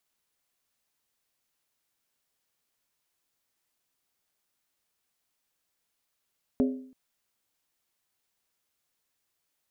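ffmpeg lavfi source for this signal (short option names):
-f lavfi -i "aevalsrc='0.112*pow(10,-3*t/0.57)*sin(2*PI*259*t)+0.0531*pow(10,-3*t/0.451)*sin(2*PI*412.8*t)+0.0251*pow(10,-3*t/0.39)*sin(2*PI*553.2*t)+0.0119*pow(10,-3*t/0.376)*sin(2*PI*594.7*t)+0.00562*pow(10,-3*t/0.35)*sin(2*PI*687.1*t)':d=0.33:s=44100"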